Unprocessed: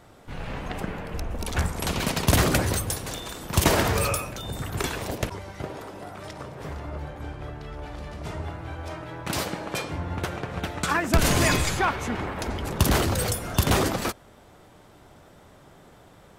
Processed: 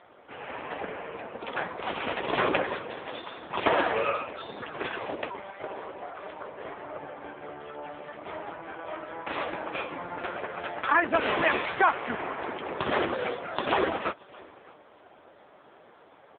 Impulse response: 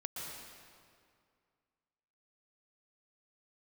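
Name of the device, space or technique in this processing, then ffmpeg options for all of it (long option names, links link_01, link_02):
satellite phone: -filter_complex "[0:a]asettb=1/sr,asplit=3[link_01][link_02][link_03];[link_01]atrim=end=5.404[link_04];[link_02]atrim=start=5.4:end=6.52,asetpts=PTS-STARTPTS,afade=type=in:duration=0.004:curve=qsin,afade=type=out:start_time=1.116:duration=0.004:curve=qsin,highpass=130[link_05];[link_03]atrim=start=6.516[link_06];[link_04][link_05]acrossfade=duration=0.004:curve1=hsin:curve2=qsin[link_07];[link_07][link_06]acrossfade=duration=0.004:curve1=qsin:curve2=hsin,highpass=380,lowpass=3300,aecho=1:1:618:0.0668,volume=4dB" -ar 8000 -c:a libopencore_amrnb -b:a 5900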